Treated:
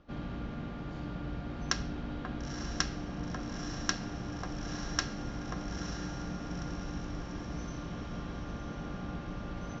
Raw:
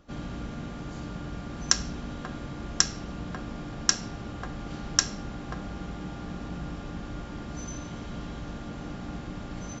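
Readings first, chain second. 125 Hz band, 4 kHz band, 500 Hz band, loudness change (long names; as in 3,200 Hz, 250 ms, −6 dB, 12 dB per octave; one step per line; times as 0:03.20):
−2.0 dB, −9.0 dB, −2.0 dB, −5.5 dB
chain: Bessel low-pass filter 3,500 Hz, order 8
feedback delay with all-pass diffusion 938 ms, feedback 57%, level −8.5 dB
level −2.5 dB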